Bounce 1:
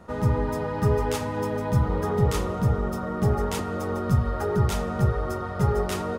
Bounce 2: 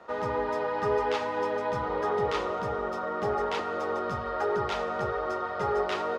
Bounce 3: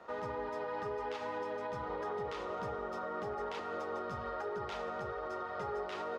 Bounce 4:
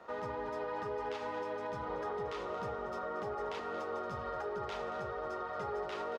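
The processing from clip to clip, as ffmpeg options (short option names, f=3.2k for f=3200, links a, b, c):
-filter_complex "[0:a]acrossover=split=360 5700:gain=0.0794 1 0.0794[a][b][c];[a][b][c]amix=inputs=3:normalize=0,acrossover=split=4800[d][e];[e]acompressor=threshold=-55dB:ratio=4:attack=1:release=60[f];[d][f]amix=inputs=2:normalize=0,volume=2dB"
-af "alimiter=level_in=3dB:limit=-24dB:level=0:latency=1:release=196,volume=-3dB,volume=-3.5dB"
-af "aecho=1:1:229:0.237"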